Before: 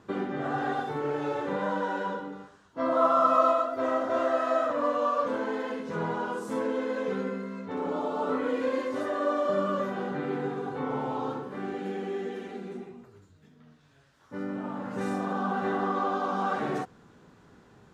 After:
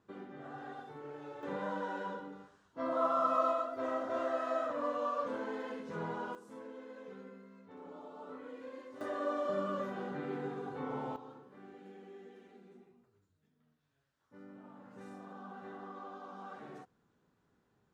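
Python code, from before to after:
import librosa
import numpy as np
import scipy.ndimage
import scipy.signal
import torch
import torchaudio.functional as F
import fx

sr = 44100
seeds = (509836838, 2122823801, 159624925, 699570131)

y = fx.gain(x, sr, db=fx.steps((0.0, -16.5), (1.43, -8.5), (6.35, -19.0), (9.01, -8.0), (11.16, -19.0)))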